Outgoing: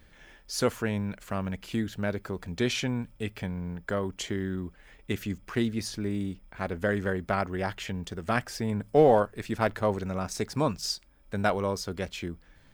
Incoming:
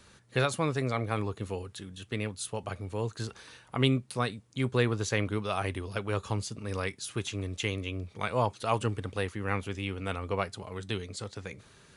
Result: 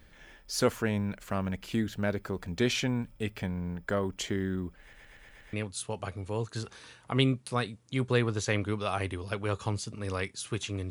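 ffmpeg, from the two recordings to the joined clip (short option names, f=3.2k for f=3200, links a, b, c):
-filter_complex "[0:a]apad=whole_dur=10.9,atrim=end=10.9,asplit=6[a][b][c][d][e][f];[a]atrim=end=4.932[g];[b]atrim=start=4.808:end=4.932[h];[c]atrim=start=4.808:end=4.932[i];[d]atrim=start=4.808:end=4.932[j];[e]atrim=start=4.808:end=4.932[k];[f]atrim=start=4.808:end=4.932[l];[1:a]atrim=start=2.168:end=7.54[m];[g][h]acrossfade=d=0.004:c1=hsin:c2=hsin[n];[n][i]acrossfade=d=0.004:c1=hsin:c2=hsin[o];[o][j]acrossfade=d=0.004:c1=hsin:c2=hsin[p];[p][k]acrossfade=d=0.004:c1=hsin:c2=hsin[q];[q][l]acrossfade=d=0.004:c1=hsin:c2=hsin[r];[r][m]acrossfade=d=0.004:c1=hsin:c2=hsin"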